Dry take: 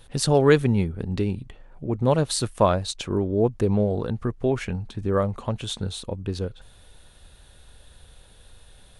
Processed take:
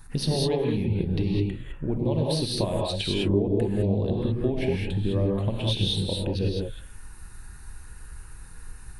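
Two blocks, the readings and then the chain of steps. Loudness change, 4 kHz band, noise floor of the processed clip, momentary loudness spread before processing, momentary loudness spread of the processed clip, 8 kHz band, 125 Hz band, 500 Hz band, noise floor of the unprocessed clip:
−2.0 dB, +3.0 dB, −44 dBFS, 12 LU, 18 LU, −6.5 dB, 0.0 dB, −4.0 dB, −52 dBFS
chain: downward compressor 8 to 1, threshold −27 dBFS, peak gain reduction 16 dB
phaser swept by the level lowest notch 500 Hz, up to 1,400 Hz, full sweep at −29 dBFS
reverb whose tail is shaped and stops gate 230 ms rising, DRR −2.5 dB
level +3.5 dB

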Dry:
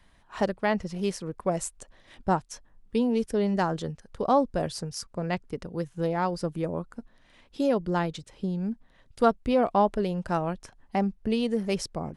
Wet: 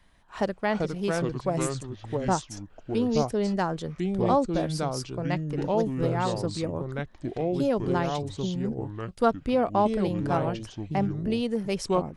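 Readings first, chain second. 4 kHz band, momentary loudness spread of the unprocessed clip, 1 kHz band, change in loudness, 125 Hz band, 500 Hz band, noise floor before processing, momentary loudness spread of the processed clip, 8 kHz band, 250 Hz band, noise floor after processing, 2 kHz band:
+1.5 dB, 12 LU, 0.0 dB, +0.5 dB, +4.0 dB, +1.0 dB, −60 dBFS, 8 LU, +1.0 dB, +1.0 dB, −53 dBFS, +0.5 dB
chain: delay with pitch and tempo change per echo 283 ms, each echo −4 semitones, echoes 2
level −1 dB

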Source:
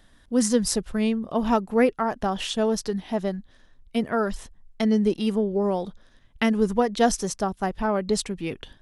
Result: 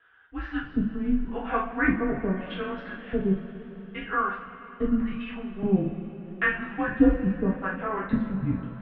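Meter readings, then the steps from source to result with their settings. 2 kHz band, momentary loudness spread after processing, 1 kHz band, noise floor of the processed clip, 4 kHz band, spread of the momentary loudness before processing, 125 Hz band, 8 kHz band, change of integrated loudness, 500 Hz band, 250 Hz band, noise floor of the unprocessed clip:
+4.5 dB, 13 LU, −4.0 dB, −45 dBFS, −13.5 dB, 9 LU, +2.0 dB, below −40 dB, −3.0 dB, −7.5 dB, −1.5 dB, −57 dBFS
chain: auto-filter band-pass square 0.8 Hz 380–1,800 Hz
coupled-rooms reverb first 0.4 s, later 4.3 s, from −18 dB, DRR −7 dB
single-sideband voice off tune −200 Hz 220–3,300 Hz

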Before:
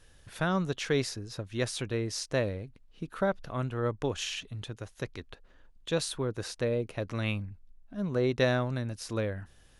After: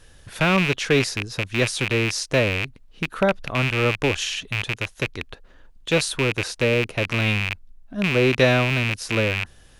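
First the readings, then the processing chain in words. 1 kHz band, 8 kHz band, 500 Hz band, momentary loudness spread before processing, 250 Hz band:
+9.5 dB, +9.0 dB, +8.5 dB, 13 LU, +8.5 dB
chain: loose part that buzzes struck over −40 dBFS, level −20 dBFS
level +8.5 dB

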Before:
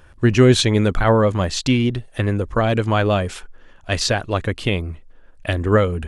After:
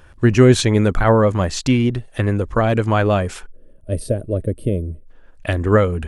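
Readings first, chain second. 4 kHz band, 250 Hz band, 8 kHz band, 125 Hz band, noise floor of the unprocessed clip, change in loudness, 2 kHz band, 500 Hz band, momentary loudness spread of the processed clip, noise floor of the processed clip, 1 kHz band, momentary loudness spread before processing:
−5.0 dB, +1.5 dB, −1.0 dB, +1.5 dB, −47 dBFS, +1.0 dB, −1.0 dB, +1.5 dB, 12 LU, −46 dBFS, +0.5 dB, 12 LU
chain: gain on a spectral selection 0:03.47–0:05.07, 660–8,200 Hz −23 dB
dynamic equaliser 3,500 Hz, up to −6 dB, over −40 dBFS, Q 1.4
level +1.5 dB

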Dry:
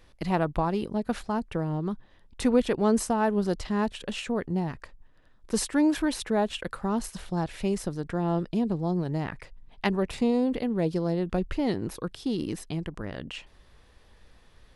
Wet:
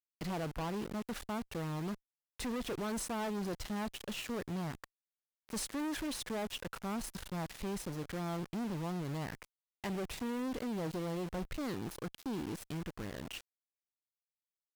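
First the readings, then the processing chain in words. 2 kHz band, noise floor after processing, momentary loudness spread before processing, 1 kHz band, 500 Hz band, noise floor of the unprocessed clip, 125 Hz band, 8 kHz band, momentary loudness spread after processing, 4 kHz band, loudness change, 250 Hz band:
−8.0 dB, below −85 dBFS, 10 LU, −10.5 dB, −12.5 dB, −57 dBFS, −10.0 dB, −6.5 dB, 6 LU, −6.0 dB, −11.0 dB, −11.5 dB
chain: centre clipping without the shift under −38 dBFS
tube saturation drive 33 dB, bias 0.3
level −2 dB

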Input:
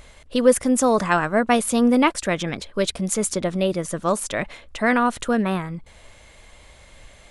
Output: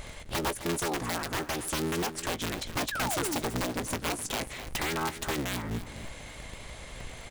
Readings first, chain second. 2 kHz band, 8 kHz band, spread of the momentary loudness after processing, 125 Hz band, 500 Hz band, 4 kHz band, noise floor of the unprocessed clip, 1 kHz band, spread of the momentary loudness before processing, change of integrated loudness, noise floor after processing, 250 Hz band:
−8.0 dB, −7.0 dB, 14 LU, −6.0 dB, −14.0 dB, −3.0 dB, −49 dBFS, −10.5 dB, 10 LU, −10.5 dB, −45 dBFS, −14.0 dB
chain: sub-harmonics by changed cycles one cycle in 3, inverted
downward compressor 12 to 1, threshold −32 dBFS, peak gain reduction 23 dB
sound drawn into the spectrogram fall, 0:02.91–0:03.37, 250–1,800 Hz −38 dBFS
wrap-around overflow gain 27.5 dB
double-tracking delay 17 ms −13 dB
repeating echo 258 ms, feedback 29%, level −13 dB
level +4 dB

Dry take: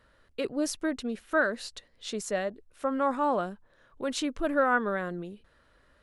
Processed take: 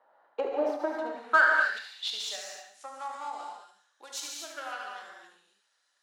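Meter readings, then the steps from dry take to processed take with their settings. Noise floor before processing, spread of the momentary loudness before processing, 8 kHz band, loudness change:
−64 dBFS, 13 LU, −1.0 dB, +0.5 dB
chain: stylus tracing distortion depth 0.19 ms
Bessel high-pass filter 290 Hz, order 8
parametric band 810 Hz +13.5 dB 0.3 octaves
on a send: feedback echo with a high-pass in the loop 73 ms, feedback 48%, high-pass 820 Hz, level −8.5 dB
on the sum: transient designer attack +8 dB, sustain +2 dB
band-pass filter sweep 750 Hz → 6,400 Hz, 0:00.87–0:02.46
in parallel at −5.5 dB: soft clipping −26 dBFS, distortion −8 dB
on the sum: reverb whose tail is shaped and stops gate 280 ms flat, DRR −0.5 dB
every ending faded ahead of time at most 110 dB per second

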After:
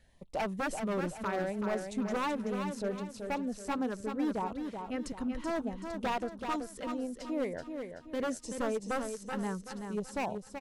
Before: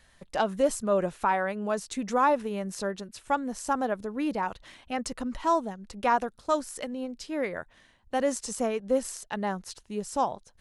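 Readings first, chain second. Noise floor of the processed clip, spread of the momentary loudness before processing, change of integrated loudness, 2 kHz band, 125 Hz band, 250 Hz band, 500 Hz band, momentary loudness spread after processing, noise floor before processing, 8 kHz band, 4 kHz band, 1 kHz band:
−53 dBFS, 10 LU, −6.0 dB, −5.0 dB, −1.0 dB, −2.0 dB, −6.5 dB, 5 LU, −61 dBFS, −9.0 dB, −5.0 dB, −9.0 dB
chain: tilt shelving filter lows +4.5 dB, about 1,400 Hz
auto-filter notch sine 0.72 Hz 640–1,700 Hz
wave folding −21 dBFS
repeating echo 380 ms, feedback 40%, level −6.5 dB
level −6 dB

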